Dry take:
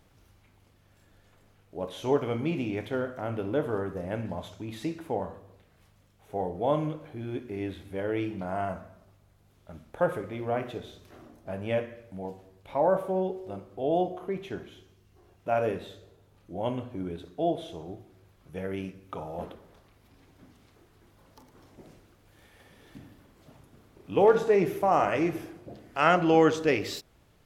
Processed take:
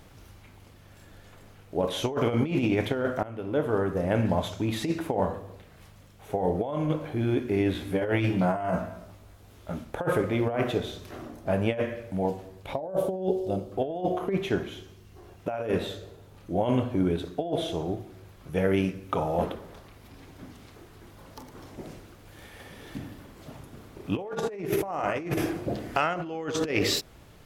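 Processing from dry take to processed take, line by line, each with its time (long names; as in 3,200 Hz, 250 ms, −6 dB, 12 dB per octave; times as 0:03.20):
0:03.23–0:04.29: fade in, from −22 dB
0:07.73–0:09.84: double-tracking delay 17 ms −2.5 dB
0:12.73–0:13.72: flat-topped bell 1,500 Hz −10.5 dB
0:24.16–0:26.69: clip gain +4 dB
whole clip: brickwall limiter −19 dBFS; compressor whose output falls as the input rises −32 dBFS, ratio −0.5; level +7 dB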